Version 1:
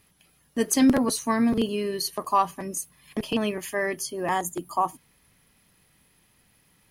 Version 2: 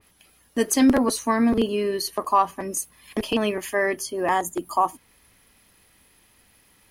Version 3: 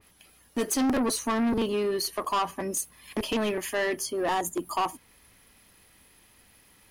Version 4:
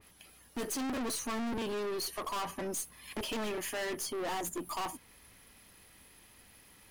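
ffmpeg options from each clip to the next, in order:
-filter_complex "[0:a]equalizer=f=150:w=2.2:g=-11,asplit=2[s0][s1];[s1]alimiter=limit=0.133:level=0:latency=1:release=192,volume=0.794[s2];[s0][s2]amix=inputs=2:normalize=0,adynamicequalizer=threshold=0.0112:dfrequency=2600:dqfactor=0.7:tfrequency=2600:tqfactor=0.7:attack=5:release=100:ratio=0.375:range=3:mode=cutabove:tftype=highshelf"
-af "asoftclip=type=tanh:threshold=0.0794"
-af "aeval=exprs='(tanh(50.1*val(0)+0.2)-tanh(0.2))/50.1':c=same"

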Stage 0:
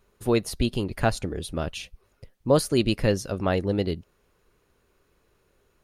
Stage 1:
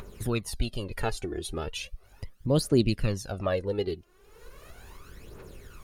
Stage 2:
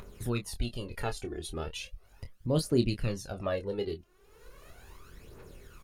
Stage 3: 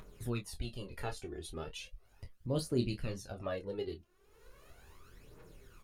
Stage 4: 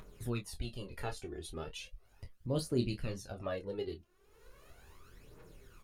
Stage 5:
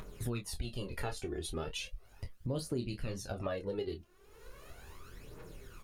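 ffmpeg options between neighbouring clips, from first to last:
-af "aphaser=in_gain=1:out_gain=1:delay=2.9:decay=0.66:speed=0.37:type=triangular,acompressor=mode=upward:threshold=0.1:ratio=2.5,volume=0.447"
-filter_complex "[0:a]asplit=2[s0][s1];[s1]adelay=25,volume=0.398[s2];[s0][s2]amix=inputs=2:normalize=0,volume=0.596"
-af "flanger=delay=6.3:depth=9.6:regen=-41:speed=0.55:shape=sinusoidal,volume=0.794"
-af anull
-af "acompressor=threshold=0.0112:ratio=6,volume=2"

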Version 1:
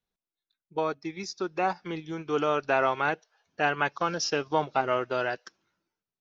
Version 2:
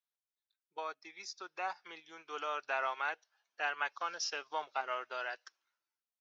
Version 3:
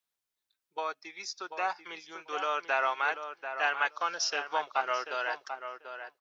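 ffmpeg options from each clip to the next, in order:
-af "highpass=880,volume=0.447"
-filter_complex "[0:a]asplit=2[s0][s1];[s1]adelay=739,lowpass=f=2100:p=1,volume=0.398,asplit=2[s2][s3];[s3]adelay=739,lowpass=f=2100:p=1,volume=0.16,asplit=2[s4][s5];[s5]adelay=739,lowpass=f=2100:p=1,volume=0.16[s6];[s0][s2][s4][s6]amix=inputs=4:normalize=0,volume=2.11"

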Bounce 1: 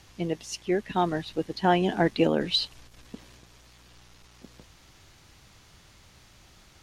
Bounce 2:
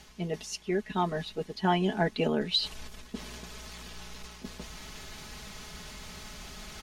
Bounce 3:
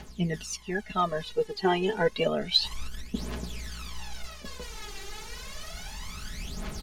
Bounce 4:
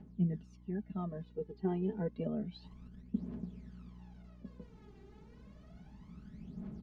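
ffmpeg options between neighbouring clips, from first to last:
-af "aecho=1:1:4.7:0.74,areverse,acompressor=mode=upward:threshold=0.0562:ratio=2.5,areverse,volume=0.562"
-af "aphaser=in_gain=1:out_gain=1:delay=2.6:decay=0.73:speed=0.3:type=triangular"
-af "bandpass=f=200:t=q:w=2:csg=0,aeval=exprs='val(0)+0.00141*(sin(2*PI*60*n/s)+sin(2*PI*2*60*n/s)/2+sin(2*PI*3*60*n/s)/3+sin(2*PI*4*60*n/s)/4+sin(2*PI*5*60*n/s)/5)':c=same,volume=0.891"

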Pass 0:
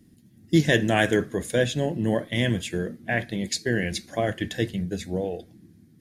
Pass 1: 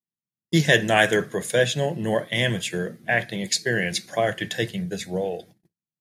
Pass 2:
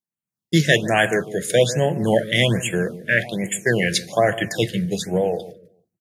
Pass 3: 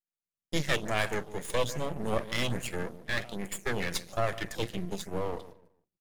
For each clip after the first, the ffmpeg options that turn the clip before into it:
-af "highpass=f=130:w=0.5412,highpass=f=130:w=1.3066,agate=range=0.00708:threshold=0.00447:ratio=16:detection=peak,equalizer=f=270:w=1.8:g=-12.5,volume=1.78"
-filter_complex "[0:a]dynaudnorm=f=110:g=5:m=2,asplit=2[s0][s1];[s1]adelay=147,lowpass=f=880:p=1,volume=0.211,asplit=2[s2][s3];[s3]adelay=147,lowpass=f=880:p=1,volume=0.31,asplit=2[s4][s5];[s5]adelay=147,lowpass=f=880:p=1,volume=0.31[s6];[s0][s2][s4][s6]amix=inputs=4:normalize=0,afftfilt=real='re*(1-between(b*sr/1024,850*pow(4900/850,0.5+0.5*sin(2*PI*1.2*pts/sr))/1.41,850*pow(4900/850,0.5+0.5*sin(2*PI*1.2*pts/sr))*1.41))':imag='im*(1-between(b*sr/1024,850*pow(4900/850,0.5+0.5*sin(2*PI*1.2*pts/sr))/1.41,850*pow(4900/850,0.5+0.5*sin(2*PI*1.2*pts/sr))*1.41))':win_size=1024:overlap=0.75"
-af "aeval=exprs='max(val(0),0)':c=same,volume=0.398"

